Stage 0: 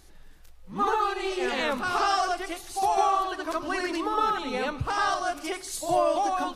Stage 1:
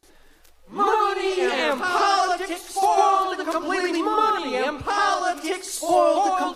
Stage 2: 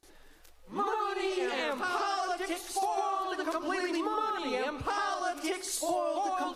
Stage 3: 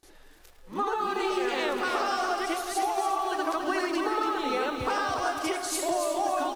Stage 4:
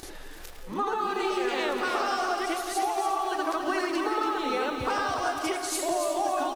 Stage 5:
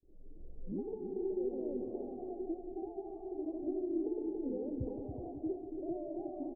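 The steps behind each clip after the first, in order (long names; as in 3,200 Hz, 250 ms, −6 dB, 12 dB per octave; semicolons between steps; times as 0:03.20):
noise gate with hold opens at −45 dBFS; low shelf with overshoot 230 Hz −9.5 dB, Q 1.5; level +4.5 dB
downward compressor, threshold −25 dBFS, peak gain reduction 11.5 dB; level −3.5 dB
slap from a distant wall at 64 metres, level −9 dB; feedback echo at a low word length 281 ms, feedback 35%, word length 9 bits, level −6 dB; level +2.5 dB
single-tap delay 174 ms −14 dB; upward compression, threshold −30 dBFS
fade in at the beginning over 0.56 s; Gaussian smoothing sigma 22 samples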